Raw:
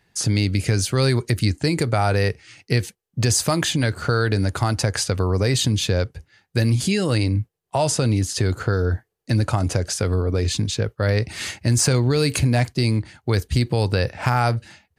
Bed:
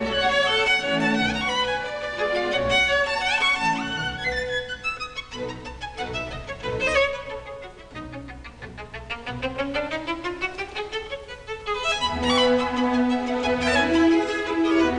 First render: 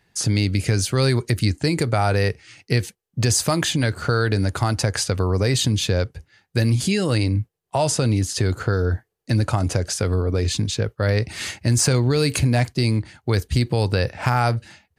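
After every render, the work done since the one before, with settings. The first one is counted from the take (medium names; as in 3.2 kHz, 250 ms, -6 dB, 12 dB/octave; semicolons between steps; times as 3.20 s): no audible change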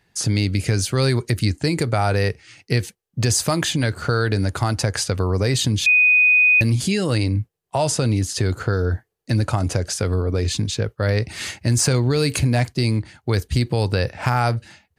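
5.86–6.61 s: bleep 2.49 kHz -11 dBFS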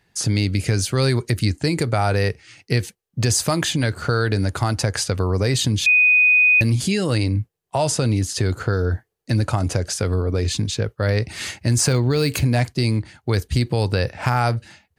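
11.88–12.42 s: decimation joined by straight lines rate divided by 2×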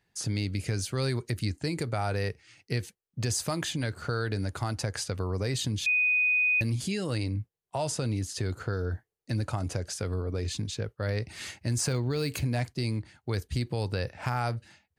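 trim -10.5 dB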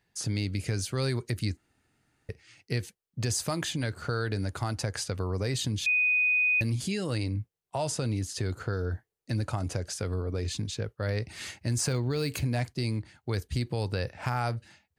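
1.57–2.29 s: room tone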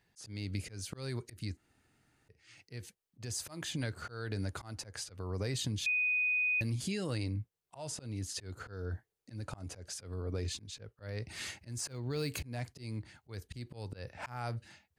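slow attack 318 ms; compression 1.5:1, threshold -41 dBFS, peak gain reduction 6 dB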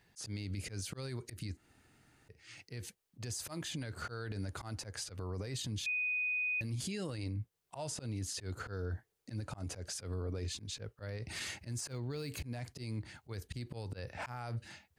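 in parallel at -2 dB: compression, threshold -43 dBFS, peak gain reduction 12 dB; on the sum: peak limiter -31.5 dBFS, peak gain reduction 11 dB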